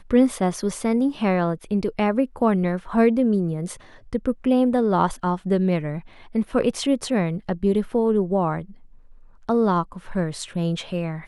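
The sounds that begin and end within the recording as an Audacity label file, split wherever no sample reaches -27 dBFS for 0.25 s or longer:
4.130000	5.980000	sound
6.350000	8.610000	sound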